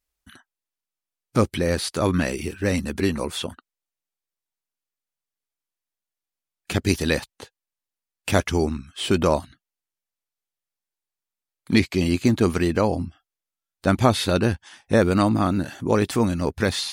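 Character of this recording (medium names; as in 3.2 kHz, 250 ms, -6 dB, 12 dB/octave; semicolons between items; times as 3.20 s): noise floor -89 dBFS; spectral tilt -5.5 dB/octave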